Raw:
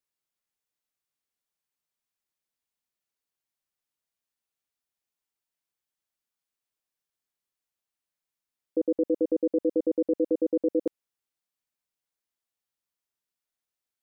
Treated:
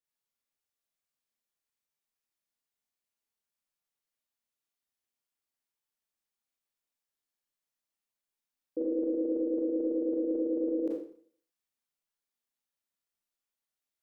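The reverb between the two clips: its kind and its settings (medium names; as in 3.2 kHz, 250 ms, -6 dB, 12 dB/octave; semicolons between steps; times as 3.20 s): Schroeder reverb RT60 0.54 s, combs from 27 ms, DRR -4.5 dB; trim -8 dB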